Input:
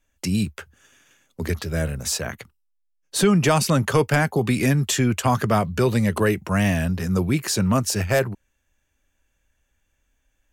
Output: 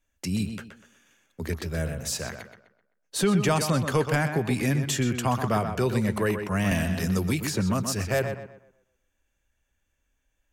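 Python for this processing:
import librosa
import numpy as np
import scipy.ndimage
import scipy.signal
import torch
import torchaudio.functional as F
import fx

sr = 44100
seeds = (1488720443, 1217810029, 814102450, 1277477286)

y = fx.echo_tape(x, sr, ms=125, feedback_pct=37, wet_db=-6.5, lp_hz=3600.0, drive_db=7.0, wow_cents=38)
y = fx.band_squash(y, sr, depth_pct=100, at=(6.71, 7.8))
y = F.gain(torch.from_numpy(y), -5.5).numpy()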